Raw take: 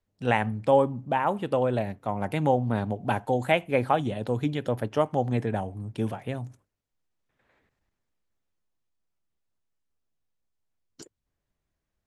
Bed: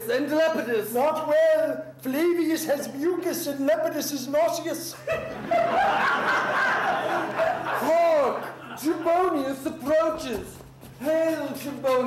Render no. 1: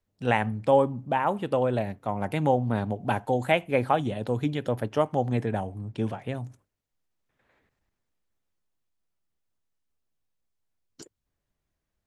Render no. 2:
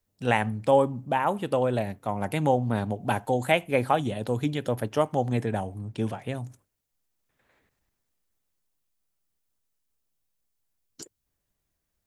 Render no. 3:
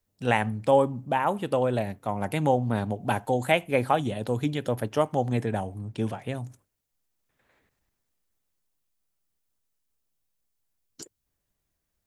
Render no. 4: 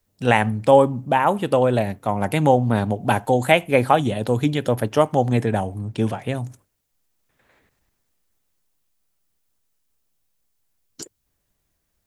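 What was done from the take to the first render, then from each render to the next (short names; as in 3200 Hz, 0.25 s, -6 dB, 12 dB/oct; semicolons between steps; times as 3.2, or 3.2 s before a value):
5.8–6.33 LPF 5600 Hz -> 9700 Hz
high shelf 6100 Hz +10.5 dB
nothing audible
gain +7 dB; limiter -1 dBFS, peak gain reduction 1 dB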